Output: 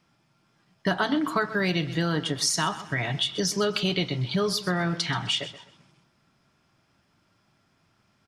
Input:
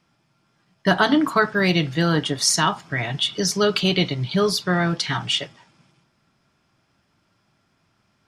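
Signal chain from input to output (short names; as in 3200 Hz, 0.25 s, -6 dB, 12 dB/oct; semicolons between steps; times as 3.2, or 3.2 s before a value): on a send: feedback echo 0.128 s, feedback 29%, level -17 dB; on the sum: compressor 2.5:1, threshold -23 dBFS, peak gain reduction 7.5 dB; gain -1 dB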